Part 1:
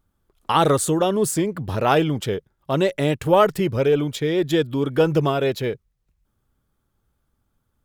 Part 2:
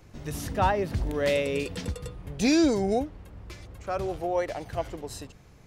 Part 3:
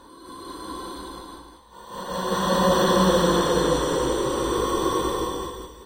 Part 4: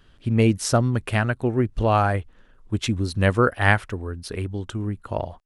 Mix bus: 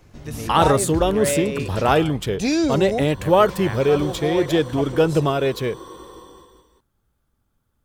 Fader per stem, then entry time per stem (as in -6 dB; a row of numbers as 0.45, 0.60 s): +0.5, +1.5, -15.5, -15.5 dB; 0.00, 0.00, 0.95, 0.00 s